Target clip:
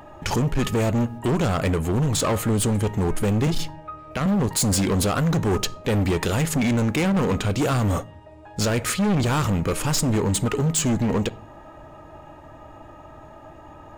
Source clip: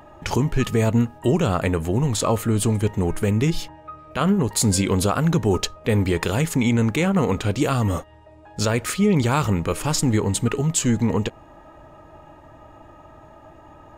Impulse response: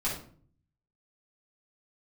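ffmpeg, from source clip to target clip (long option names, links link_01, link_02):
-filter_complex "[0:a]asettb=1/sr,asplit=3[link_01][link_02][link_03];[link_01]atrim=end=3.474[link_04];[link_02]atrim=start=3.47:end=4.26,asetpts=PTS-STARTPTS,afade=type=in:duration=0.004:curve=qsin,afade=type=out:start_time=0.786:duration=0.004:curve=qsin,acrossover=split=320[link_05][link_06];[link_06]acompressor=threshold=-24dB:ratio=6[link_07];[link_05][link_07]amix=inputs=2:normalize=0[link_08];[link_03]atrim=start=4.256[link_09];[link_04][link_08]acrossfade=duration=0.004:curve1=hsin:curve2=qsin[link_10];[link_10][link_09]acrossfade=duration=0.004:curve1=qsin:curve2=hsin,asplit=2[link_11][link_12];[1:a]atrim=start_sample=2205[link_13];[link_12][link_13]afir=irnorm=-1:irlink=0,volume=-25.5dB[link_14];[link_11][link_14]amix=inputs=2:normalize=0,volume=20dB,asoftclip=hard,volume=-20dB,volume=2dB"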